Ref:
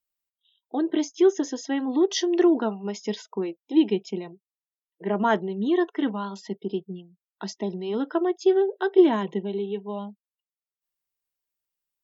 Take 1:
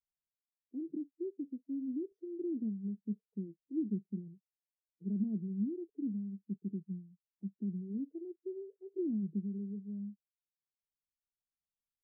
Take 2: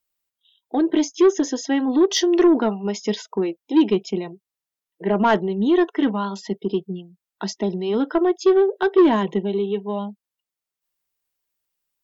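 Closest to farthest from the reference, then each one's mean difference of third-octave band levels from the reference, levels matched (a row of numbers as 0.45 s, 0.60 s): 2, 1; 1.5 dB, 9.0 dB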